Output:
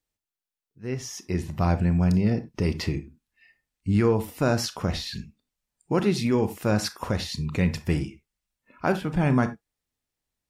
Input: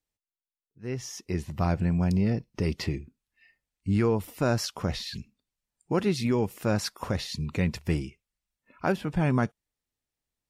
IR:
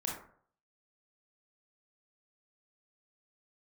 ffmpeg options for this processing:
-filter_complex "[0:a]asplit=2[s0][s1];[1:a]atrim=start_sample=2205,atrim=end_sample=4410[s2];[s1][s2]afir=irnorm=-1:irlink=0,volume=0.398[s3];[s0][s3]amix=inputs=2:normalize=0"

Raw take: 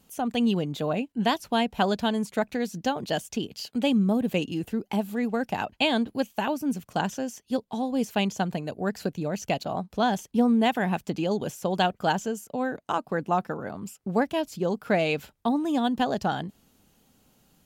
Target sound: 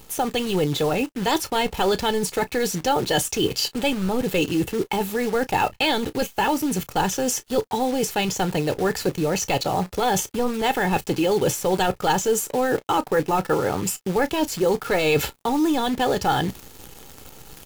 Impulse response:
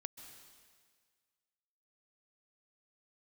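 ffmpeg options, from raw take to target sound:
-af "apsyclip=15.8,areverse,acompressor=threshold=0.141:ratio=5,areverse,aecho=1:1:2.3:0.59,acrusher=bits=6:dc=4:mix=0:aa=0.000001,aecho=1:1:16|32:0.133|0.141,volume=0.668"

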